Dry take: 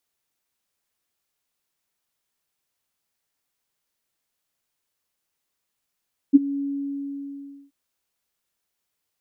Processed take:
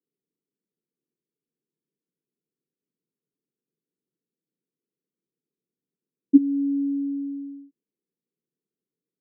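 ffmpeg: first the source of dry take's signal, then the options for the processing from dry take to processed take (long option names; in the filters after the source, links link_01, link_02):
-f lavfi -i "aevalsrc='0.531*sin(2*PI*280*t)':duration=1.38:sample_rate=44100,afade=type=in:duration=0.025,afade=type=out:start_time=0.025:duration=0.023:silence=0.119,afade=type=out:start_time=0.27:duration=1.11"
-filter_complex "[0:a]asplit=2[link_01][link_02];[link_02]alimiter=limit=-15.5dB:level=0:latency=1:release=446,volume=-3dB[link_03];[link_01][link_03]amix=inputs=2:normalize=0,asuperpass=centerf=250:order=12:qfactor=0.76"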